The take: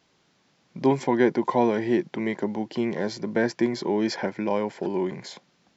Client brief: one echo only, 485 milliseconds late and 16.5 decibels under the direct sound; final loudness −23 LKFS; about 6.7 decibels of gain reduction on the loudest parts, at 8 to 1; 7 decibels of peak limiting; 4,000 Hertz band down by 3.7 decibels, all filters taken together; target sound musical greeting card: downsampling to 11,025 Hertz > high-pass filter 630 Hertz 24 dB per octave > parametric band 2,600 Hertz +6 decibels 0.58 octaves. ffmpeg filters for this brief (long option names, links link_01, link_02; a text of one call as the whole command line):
ffmpeg -i in.wav -af "equalizer=frequency=4000:width_type=o:gain=-7,acompressor=threshold=-22dB:ratio=8,alimiter=limit=-20dB:level=0:latency=1,aecho=1:1:485:0.15,aresample=11025,aresample=44100,highpass=frequency=630:width=0.5412,highpass=frequency=630:width=1.3066,equalizer=frequency=2600:width_type=o:width=0.58:gain=6,volume=16dB" out.wav